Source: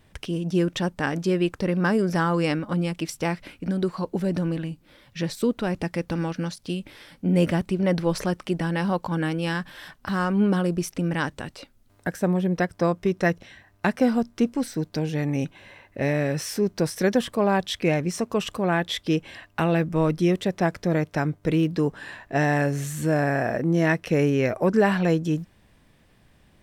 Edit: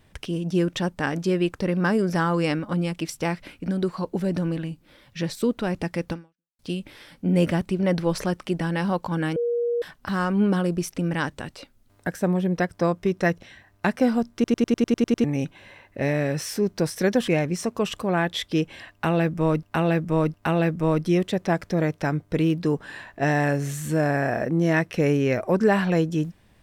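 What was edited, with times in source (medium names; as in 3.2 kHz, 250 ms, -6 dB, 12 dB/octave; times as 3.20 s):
6.12–6.59 s: fade out exponential
9.36–9.82 s: bleep 475 Hz -21 dBFS
14.34 s: stutter in place 0.10 s, 9 plays
17.28–17.83 s: delete
19.47–20.18 s: loop, 3 plays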